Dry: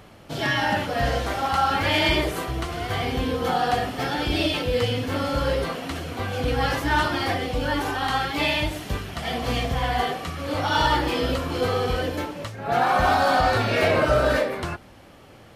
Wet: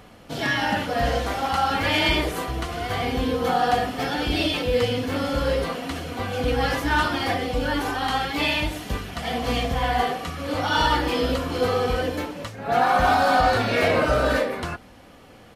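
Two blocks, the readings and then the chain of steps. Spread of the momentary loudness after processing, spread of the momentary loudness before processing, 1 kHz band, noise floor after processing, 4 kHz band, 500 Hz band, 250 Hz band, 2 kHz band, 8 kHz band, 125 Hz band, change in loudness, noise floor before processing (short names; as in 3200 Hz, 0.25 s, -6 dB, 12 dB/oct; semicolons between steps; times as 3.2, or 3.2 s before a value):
9 LU, 10 LU, +0.5 dB, -48 dBFS, +0.5 dB, +0.5 dB, +1.0 dB, +0.5 dB, +0.5 dB, -1.5 dB, +0.5 dB, -48 dBFS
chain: comb 4.1 ms, depth 30%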